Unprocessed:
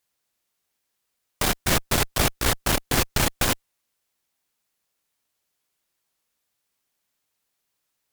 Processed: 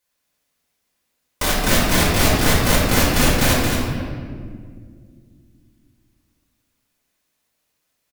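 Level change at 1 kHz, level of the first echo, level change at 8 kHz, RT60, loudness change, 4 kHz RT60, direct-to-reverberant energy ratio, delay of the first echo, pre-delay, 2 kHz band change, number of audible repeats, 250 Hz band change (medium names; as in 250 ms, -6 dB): +6.0 dB, -4.5 dB, +4.5 dB, 1.9 s, +5.5 dB, 1.2 s, -6.5 dB, 224 ms, 3 ms, +6.5 dB, 1, +10.0 dB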